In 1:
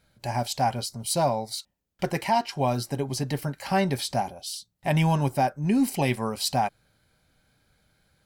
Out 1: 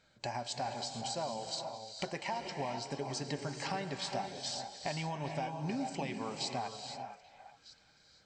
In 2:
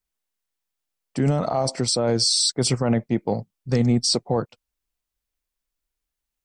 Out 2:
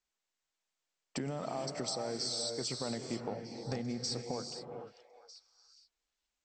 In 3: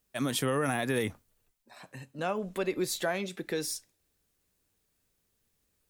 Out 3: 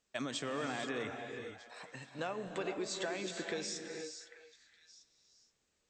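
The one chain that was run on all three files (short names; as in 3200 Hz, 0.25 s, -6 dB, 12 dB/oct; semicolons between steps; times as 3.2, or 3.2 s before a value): low shelf 180 Hz -11.5 dB; compressor 10:1, threshold -35 dBFS; brick-wall FIR low-pass 8300 Hz; on a send: delay with a stepping band-pass 0.417 s, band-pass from 690 Hz, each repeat 1.4 oct, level -11 dB; on the sum: non-linear reverb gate 0.5 s rising, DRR 5 dB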